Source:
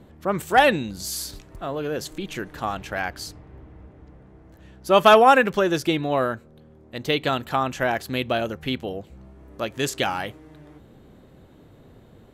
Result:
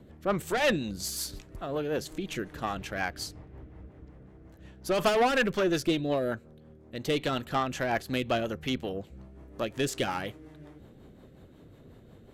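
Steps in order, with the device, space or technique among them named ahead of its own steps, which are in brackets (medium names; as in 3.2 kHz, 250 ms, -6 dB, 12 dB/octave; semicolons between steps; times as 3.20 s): 5.91–6.32 s: high-order bell 1.3 kHz -9.5 dB; overdriven rotary cabinet (valve stage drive 18 dB, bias 0.35; rotary cabinet horn 5.5 Hz)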